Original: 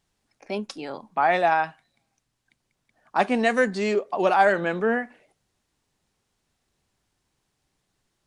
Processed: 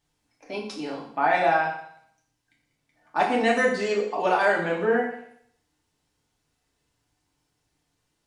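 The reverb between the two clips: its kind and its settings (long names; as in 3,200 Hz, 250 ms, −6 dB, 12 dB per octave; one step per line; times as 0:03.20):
feedback delay network reverb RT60 0.66 s, low-frequency decay 1×, high-frequency decay 1×, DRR −3.5 dB
level −5 dB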